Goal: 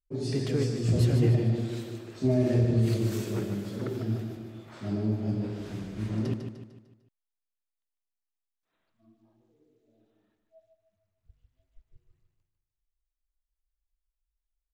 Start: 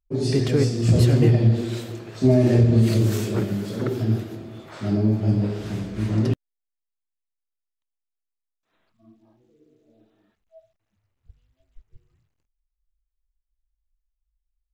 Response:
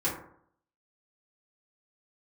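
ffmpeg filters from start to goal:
-af "aecho=1:1:150|300|450|600|750:0.422|0.186|0.0816|0.0359|0.0158,volume=-8.5dB"

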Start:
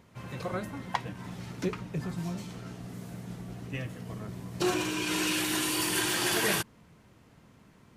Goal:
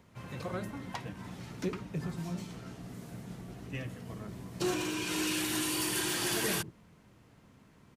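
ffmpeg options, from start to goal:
-filter_complex "[0:a]acrossover=split=380|3900[a][b][c];[a]aecho=1:1:80:0.501[d];[b]asoftclip=type=tanh:threshold=-30.5dB[e];[d][e][c]amix=inputs=3:normalize=0,volume=-2.5dB"

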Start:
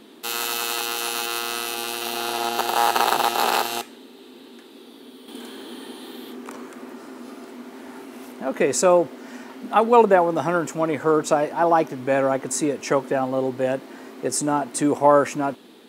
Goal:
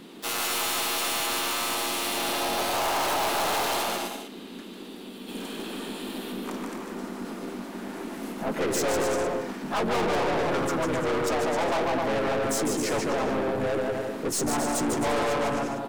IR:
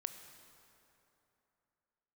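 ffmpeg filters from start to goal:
-filter_complex "[0:a]aecho=1:1:150|262.5|346.9|410.2|457.6:0.631|0.398|0.251|0.158|0.1,asplit=3[a][b][c];[b]asetrate=35002,aresample=44100,atempo=1.25992,volume=-3dB[d];[c]asetrate=55563,aresample=44100,atempo=0.793701,volume=-11dB[e];[a][d][e]amix=inputs=3:normalize=0,aeval=exprs='(tanh(15.8*val(0)+0.25)-tanh(0.25))/15.8':c=same"

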